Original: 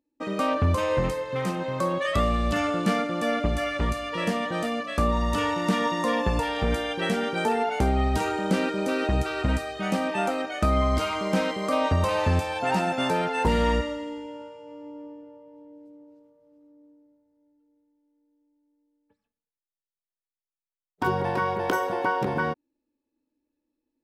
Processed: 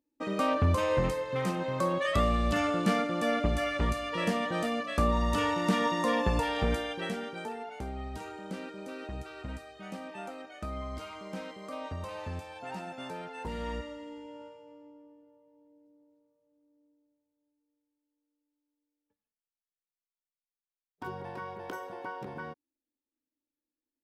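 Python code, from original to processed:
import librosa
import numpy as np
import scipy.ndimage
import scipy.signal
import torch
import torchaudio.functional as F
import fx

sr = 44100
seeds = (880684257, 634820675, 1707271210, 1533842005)

y = fx.gain(x, sr, db=fx.line((6.64, -3.0), (7.59, -15.5), (13.47, -15.5), (14.47, -6.0), (15.03, -14.5)))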